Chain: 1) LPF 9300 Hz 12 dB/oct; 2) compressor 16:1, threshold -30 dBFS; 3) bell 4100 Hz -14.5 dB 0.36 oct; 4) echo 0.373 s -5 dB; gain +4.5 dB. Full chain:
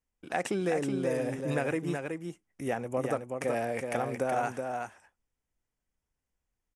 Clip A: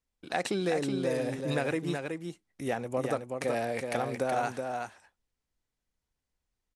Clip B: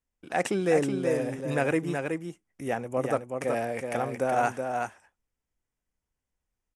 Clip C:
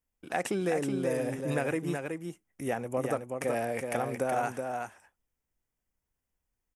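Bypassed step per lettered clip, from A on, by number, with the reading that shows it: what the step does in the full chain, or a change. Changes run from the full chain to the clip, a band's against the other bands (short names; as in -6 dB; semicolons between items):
3, 4 kHz band +6.0 dB; 2, mean gain reduction 2.0 dB; 1, 8 kHz band +2.5 dB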